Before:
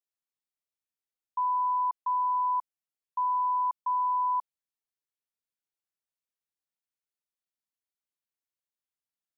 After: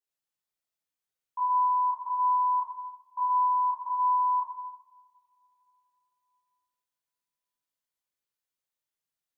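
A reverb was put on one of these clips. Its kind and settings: two-slope reverb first 0.91 s, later 3.2 s, from -25 dB, DRR -6.5 dB; gain -4.5 dB

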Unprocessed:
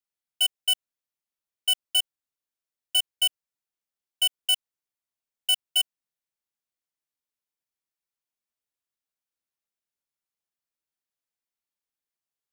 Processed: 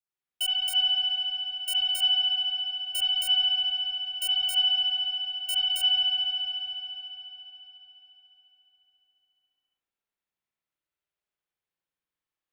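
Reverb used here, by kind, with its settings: spring tank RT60 4 s, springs 54 ms, chirp 50 ms, DRR -9.5 dB; gain -6.5 dB

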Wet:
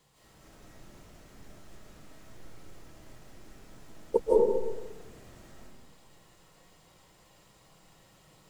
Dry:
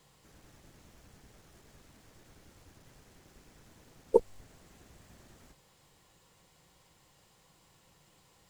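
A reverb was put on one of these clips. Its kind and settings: digital reverb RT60 1.1 s, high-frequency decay 0.35×, pre-delay 0.12 s, DRR -7.5 dB; gain -3 dB

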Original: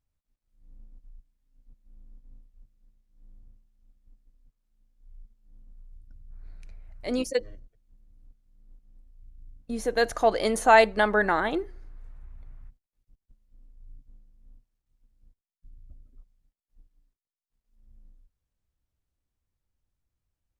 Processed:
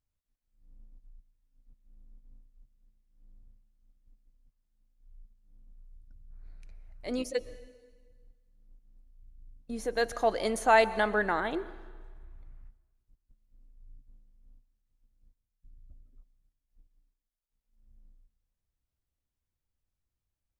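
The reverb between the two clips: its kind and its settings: plate-style reverb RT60 1.5 s, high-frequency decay 0.9×, pre-delay 0.105 s, DRR 17 dB; gain -5 dB

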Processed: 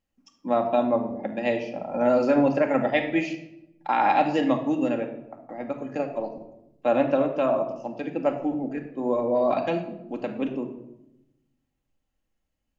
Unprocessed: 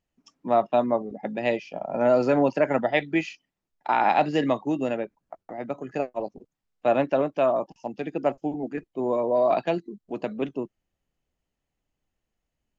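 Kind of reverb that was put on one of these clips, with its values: shoebox room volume 2900 m³, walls furnished, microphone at 2.2 m; gain -2 dB

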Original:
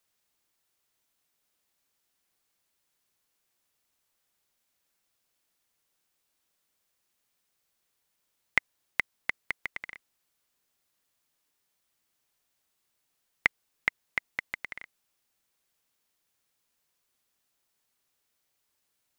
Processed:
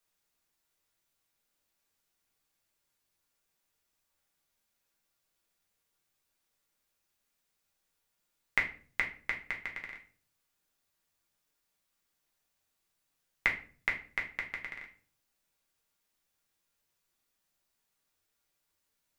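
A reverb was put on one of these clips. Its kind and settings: shoebox room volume 31 m³, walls mixed, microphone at 0.57 m; gain -5.5 dB

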